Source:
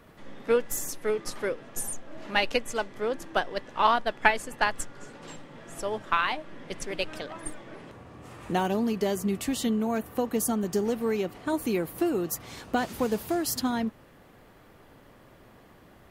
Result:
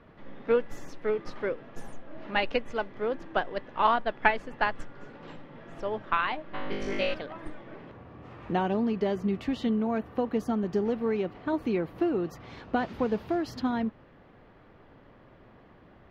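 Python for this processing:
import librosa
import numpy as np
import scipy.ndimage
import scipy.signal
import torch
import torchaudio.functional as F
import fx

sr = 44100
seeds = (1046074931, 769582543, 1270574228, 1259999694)

y = fx.air_absorb(x, sr, metres=270.0)
y = fx.room_flutter(y, sr, wall_m=3.4, rt60_s=1.0, at=(6.53, 7.13), fade=0.02)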